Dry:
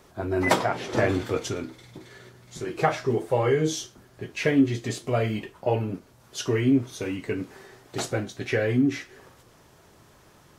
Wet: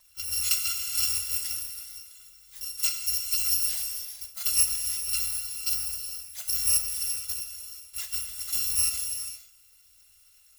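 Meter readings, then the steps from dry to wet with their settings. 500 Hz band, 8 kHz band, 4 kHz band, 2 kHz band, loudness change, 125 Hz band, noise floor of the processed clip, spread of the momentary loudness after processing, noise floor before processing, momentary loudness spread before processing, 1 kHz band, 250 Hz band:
under -35 dB, +13.0 dB, +7.0 dB, -10.0 dB, 0.0 dB, -22.0 dB, -59 dBFS, 14 LU, -56 dBFS, 17 LU, -21.5 dB, under -40 dB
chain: FFT order left unsorted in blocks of 256 samples; passive tone stack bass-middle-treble 10-0-10; non-linear reverb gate 0.5 s flat, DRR 4.5 dB; gain -4 dB

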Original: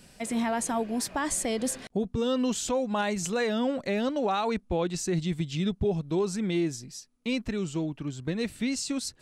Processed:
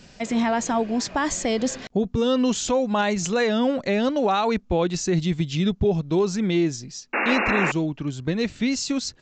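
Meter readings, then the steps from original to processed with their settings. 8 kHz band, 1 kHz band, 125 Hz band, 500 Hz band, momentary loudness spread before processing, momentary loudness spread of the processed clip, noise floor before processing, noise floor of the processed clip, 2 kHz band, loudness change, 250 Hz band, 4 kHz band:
+2.5 dB, +7.0 dB, +6.0 dB, +6.0 dB, 5 LU, 5 LU, -60 dBFS, -50 dBFS, +9.5 dB, +6.0 dB, +6.0 dB, +6.0 dB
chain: painted sound noise, 7.13–7.72, 210–2800 Hz -29 dBFS; downsampling 16000 Hz; gain +6 dB

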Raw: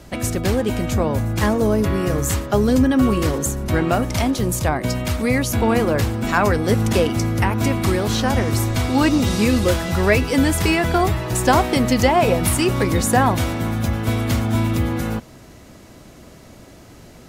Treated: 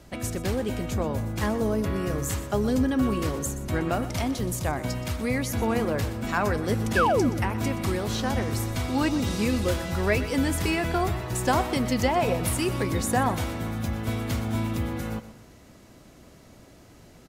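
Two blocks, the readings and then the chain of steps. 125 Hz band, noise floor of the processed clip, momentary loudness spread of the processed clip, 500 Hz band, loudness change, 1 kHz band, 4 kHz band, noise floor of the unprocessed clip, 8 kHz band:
-8.0 dB, -51 dBFS, 6 LU, -7.5 dB, -7.5 dB, -7.0 dB, -8.0 dB, -44 dBFS, -8.0 dB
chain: painted sound fall, 6.96–7.3, 210–1800 Hz -14 dBFS; feedback echo 0.123 s, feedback 40%, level -14.5 dB; gain -8 dB

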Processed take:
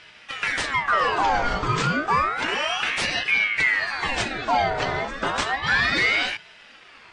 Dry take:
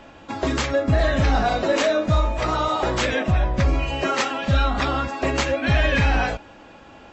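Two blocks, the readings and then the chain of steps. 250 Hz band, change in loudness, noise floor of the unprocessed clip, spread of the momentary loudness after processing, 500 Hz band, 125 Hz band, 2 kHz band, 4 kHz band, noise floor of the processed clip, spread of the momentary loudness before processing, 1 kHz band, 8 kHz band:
-8.5 dB, -0.5 dB, -46 dBFS, 7 LU, -7.5 dB, -11.5 dB, +5.0 dB, +2.5 dB, -49 dBFS, 5 LU, +1.5 dB, n/a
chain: ring modulator with a swept carrier 1500 Hz, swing 55%, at 0.31 Hz

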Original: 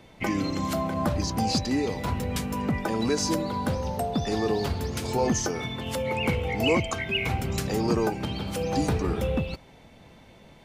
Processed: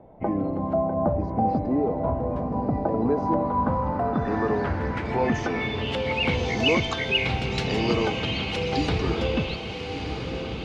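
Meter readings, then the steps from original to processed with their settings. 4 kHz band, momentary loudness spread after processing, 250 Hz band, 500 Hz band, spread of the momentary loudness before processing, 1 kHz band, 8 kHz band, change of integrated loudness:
+4.0 dB, 5 LU, +1.5 dB, +3.0 dB, 5 LU, +4.0 dB, -12.0 dB, +2.0 dB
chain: diffused feedback echo 1.277 s, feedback 51%, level -6.5 dB; low-pass sweep 710 Hz -> 3800 Hz, 2.86–6.46

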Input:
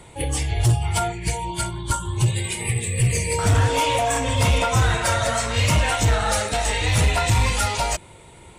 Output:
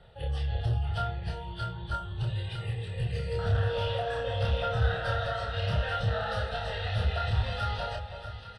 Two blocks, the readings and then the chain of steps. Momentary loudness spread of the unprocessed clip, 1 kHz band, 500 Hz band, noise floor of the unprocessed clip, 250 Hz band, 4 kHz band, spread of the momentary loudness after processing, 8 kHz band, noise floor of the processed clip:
7 LU, -11.0 dB, -7.5 dB, -46 dBFS, -14.0 dB, -11.5 dB, 8 LU, under -30 dB, -44 dBFS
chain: LPF 3500 Hz 12 dB/oct; soft clip -14 dBFS, distortion -19 dB; fixed phaser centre 1500 Hz, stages 8; doubler 28 ms -3 dB; echo with dull and thin repeats by turns 0.319 s, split 1100 Hz, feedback 63%, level -7 dB; gain -8 dB

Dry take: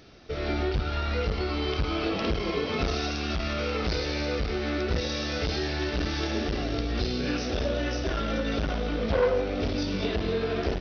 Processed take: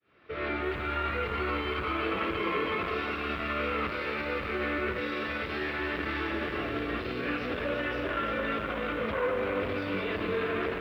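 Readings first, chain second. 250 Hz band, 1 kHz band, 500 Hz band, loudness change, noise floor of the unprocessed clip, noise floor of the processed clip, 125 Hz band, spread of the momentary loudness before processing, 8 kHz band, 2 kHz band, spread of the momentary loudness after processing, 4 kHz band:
-4.5 dB, +2.0 dB, -3.0 dB, -2.5 dB, -31 dBFS, -36 dBFS, -9.5 dB, 2 LU, n/a, +3.0 dB, 3 LU, -7.0 dB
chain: opening faded in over 0.62 s; tilt shelf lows -4.5 dB, about 1100 Hz; limiter -26 dBFS, peak gain reduction 11.5 dB; speaker cabinet 110–2500 Hz, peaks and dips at 150 Hz -6 dB, 240 Hz -5 dB, 740 Hz -7 dB, 1100 Hz +5 dB; lo-fi delay 0.341 s, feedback 35%, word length 11-bit, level -6.5 dB; gain +5.5 dB

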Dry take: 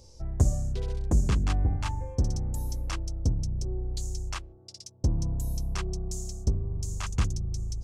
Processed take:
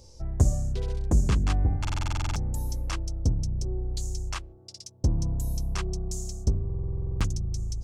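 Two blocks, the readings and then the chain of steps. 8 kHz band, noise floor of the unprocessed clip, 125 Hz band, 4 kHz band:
+1.0 dB, -53 dBFS, +1.5 dB, +2.0 dB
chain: stuck buffer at 1.8/6.65, samples 2048, times 11; gain +1.5 dB

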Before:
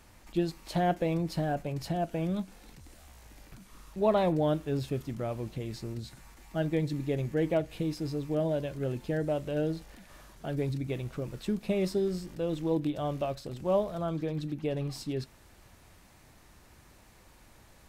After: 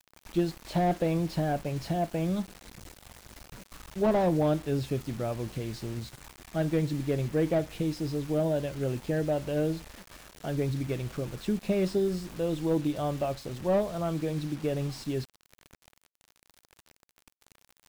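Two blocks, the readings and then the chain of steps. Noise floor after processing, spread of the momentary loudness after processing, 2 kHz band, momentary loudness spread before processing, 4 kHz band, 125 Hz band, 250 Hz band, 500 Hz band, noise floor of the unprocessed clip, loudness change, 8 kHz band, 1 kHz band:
-73 dBFS, 18 LU, +1.5 dB, 9 LU, +1.5 dB, +2.0 dB, +2.0 dB, +1.5 dB, -58 dBFS, +2.0 dB, +4.5 dB, +1.0 dB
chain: requantised 8-bit, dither none; slew limiter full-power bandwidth 39 Hz; gain +2 dB

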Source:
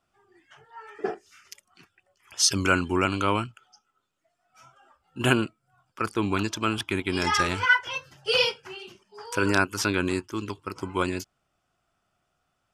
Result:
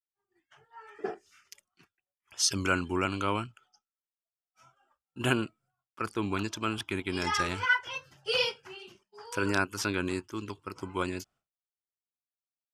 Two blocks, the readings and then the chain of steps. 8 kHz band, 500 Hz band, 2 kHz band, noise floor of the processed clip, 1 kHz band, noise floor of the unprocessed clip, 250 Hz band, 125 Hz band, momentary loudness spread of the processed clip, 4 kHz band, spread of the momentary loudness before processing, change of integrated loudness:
-5.5 dB, -5.5 dB, -5.5 dB, under -85 dBFS, -5.5 dB, -76 dBFS, -5.5 dB, -5.5 dB, 17 LU, -5.5 dB, 17 LU, -5.5 dB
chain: expander -51 dBFS; gain -5.5 dB

